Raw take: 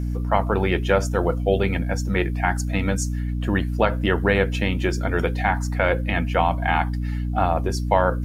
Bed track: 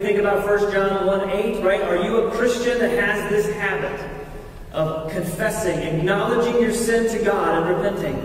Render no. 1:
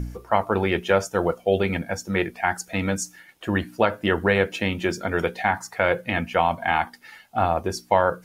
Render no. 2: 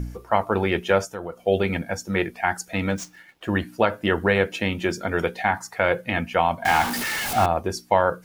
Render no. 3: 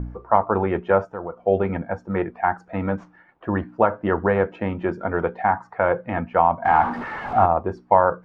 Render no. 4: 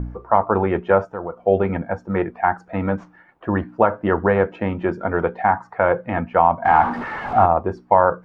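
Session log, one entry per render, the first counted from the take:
de-hum 60 Hz, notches 5
1.05–1.47 compressor 2:1, threshold -36 dBFS; 2.9–3.49 median filter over 5 samples; 6.65–7.46 zero-crossing step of -21.5 dBFS
synth low-pass 1100 Hz, resonance Q 1.7
gain +2.5 dB; limiter -2 dBFS, peak gain reduction 2 dB

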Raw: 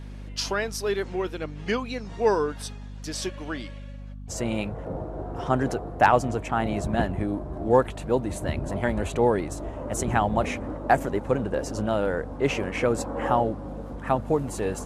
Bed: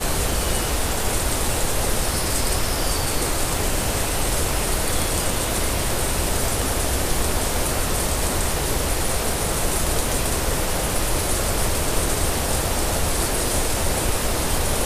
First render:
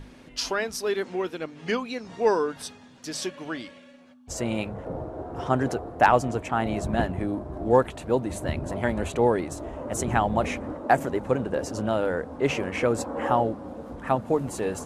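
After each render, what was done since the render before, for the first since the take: notches 50/100/150/200 Hz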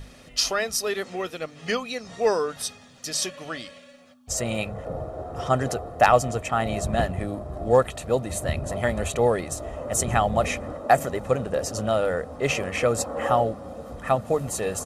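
high shelf 3700 Hz +9 dB; comb 1.6 ms, depth 49%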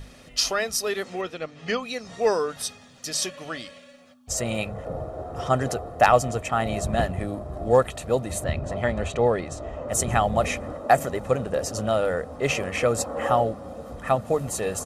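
1.21–1.83 air absorption 72 m; 8.44–9.89 air absorption 87 m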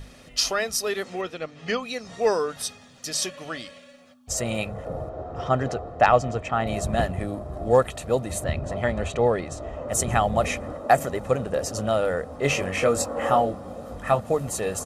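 5.09–6.67 air absorption 110 m; 12.42–14.2 doubler 21 ms -5.5 dB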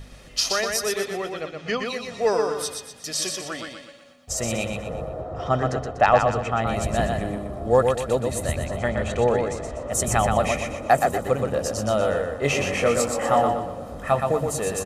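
feedback echo 0.122 s, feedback 40%, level -4.5 dB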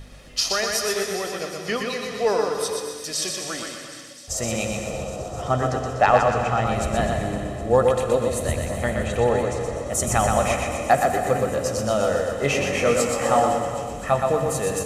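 thin delay 0.256 s, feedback 81%, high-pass 3300 Hz, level -14 dB; non-linear reverb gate 0.47 s flat, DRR 6 dB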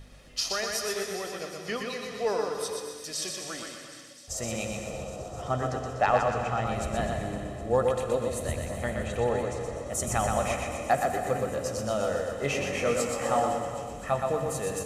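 gain -7 dB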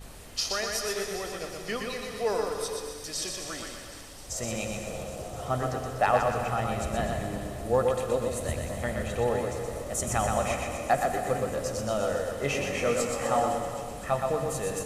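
add bed -25.5 dB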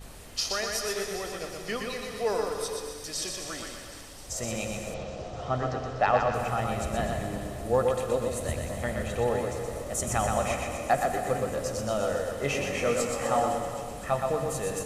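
4.94–6.34 LPF 5800 Hz 24 dB/oct

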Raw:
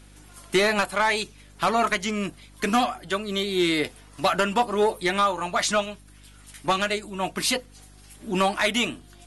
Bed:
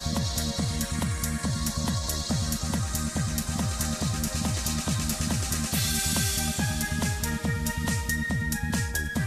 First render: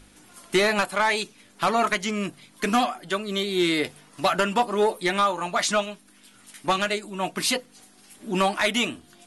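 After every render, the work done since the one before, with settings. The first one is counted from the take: de-hum 50 Hz, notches 3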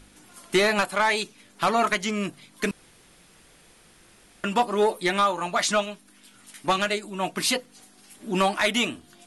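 2.71–4.44 room tone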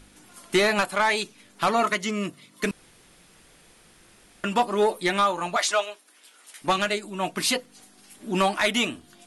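1.81–2.64 notch comb 800 Hz; 5.56–6.62 HPF 390 Hz 24 dB/oct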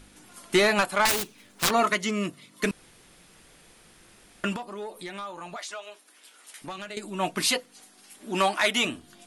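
1.05–1.71 self-modulated delay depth 0.89 ms; 4.56–6.97 compressor 3:1, threshold -39 dBFS; 7.47–8.85 low shelf 210 Hz -11 dB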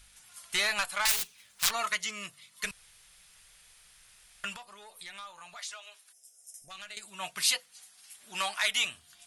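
6.13–6.71 spectral gain 760–5000 Hz -24 dB; passive tone stack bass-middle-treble 10-0-10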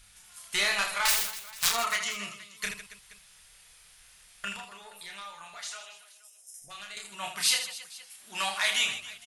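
reverse bouncing-ball echo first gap 30 ms, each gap 1.6×, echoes 5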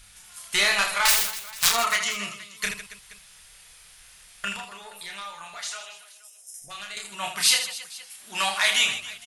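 gain +5.5 dB

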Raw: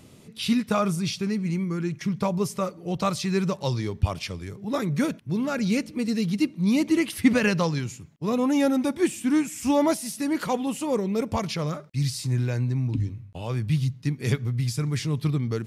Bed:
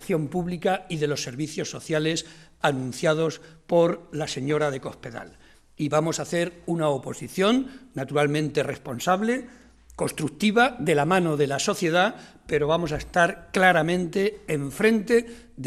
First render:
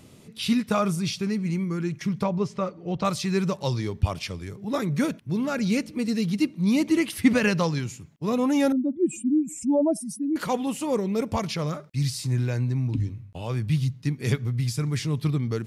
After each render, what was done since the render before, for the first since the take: 2.23–3.05 air absorption 140 m; 8.72–10.36 spectral contrast raised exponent 2.6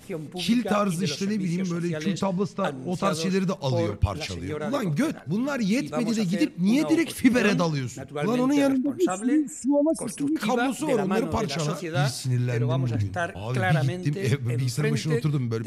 add bed -8.5 dB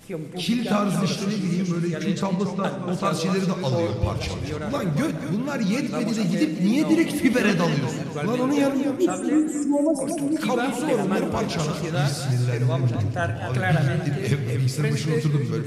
shoebox room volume 1900 m³, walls mixed, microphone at 0.75 m; warbling echo 0.235 s, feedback 39%, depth 133 cents, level -9 dB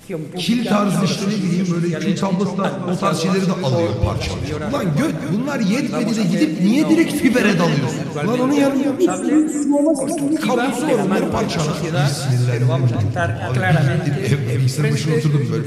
gain +5.5 dB; limiter -3 dBFS, peak gain reduction 1 dB

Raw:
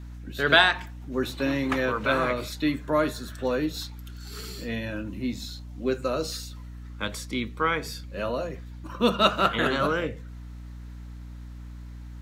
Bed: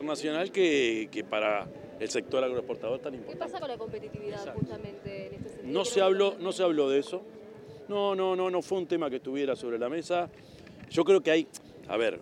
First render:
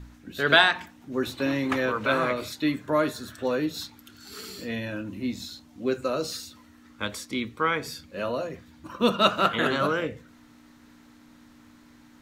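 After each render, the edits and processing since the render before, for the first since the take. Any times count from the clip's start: de-hum 60 Hz, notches 3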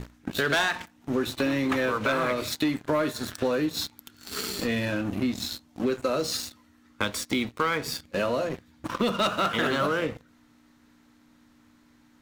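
sample leveller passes 3; compressor 4:1, threshold -25 dBFS, peak gain reduction 14 dB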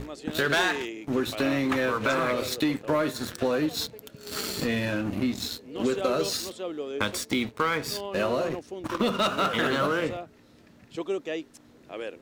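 add bed -8 dB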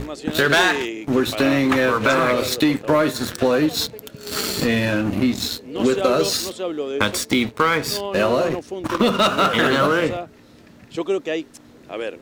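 gain +8 dB

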